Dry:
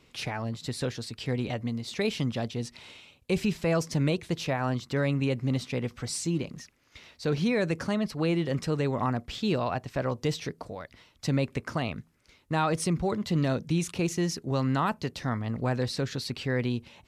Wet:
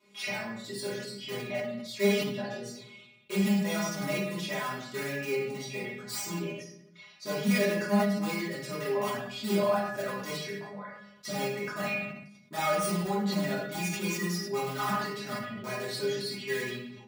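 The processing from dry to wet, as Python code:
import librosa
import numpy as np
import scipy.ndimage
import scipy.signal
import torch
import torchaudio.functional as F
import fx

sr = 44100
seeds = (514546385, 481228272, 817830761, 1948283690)

p1 = fx.tracing_dist(x, sr, depth_ms=0.044)
p2 = fx.dynamic_eq(p1, sr, hz=2000.0, q=1.6, threshold_db=-47.0, ratio=4.0, max_db=6)
p3 = fx.dereverb_blind(p2, sr, rt60_s=1.8)
p4 = (np.mod(10.0 ** (21.0 / 20.0) * p3 + 1.0, 2.0) - 1.0) / 10.0 ** (21.0 / 20.0)
p5 = p3 + (p4 * 10.0 ** (-6.0 / 20.0))
p6 = scipy.signal.sosfilt(scipy.signal.butter(2, 130.0, 'highpass', fs=sr, output='sos'), p5)
p7 = fx.low_shelf(p6, sr, hz=310.0, db=-5.0)
p8 = fx.stiff_resonator(p7, sr, f0_hz=200.0, decay_s=0.24, stiffness=0.002)
p9 = p8 + fx.echo_single(p8, sr, ms=78, db=-21.0, dry=0)
p10 = fx.room_shoebox(p9, sr, seeds[0], volume_m3=210.0, walls='mixed', distance_m=2.8)
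y = fx.sustainer(p10, sr, db_per_s=60.0)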